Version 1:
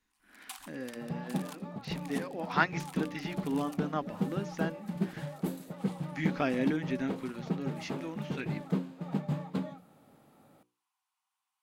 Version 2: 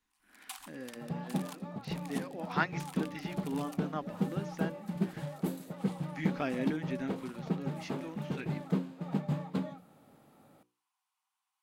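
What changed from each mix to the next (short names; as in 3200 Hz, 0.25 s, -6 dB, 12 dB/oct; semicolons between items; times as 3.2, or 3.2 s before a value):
speech -4.0 dB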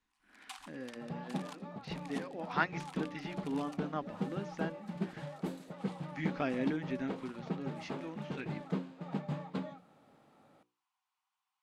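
second sound: add low shelf 360 Hz -6.5 dB; master: add air absorption 65 m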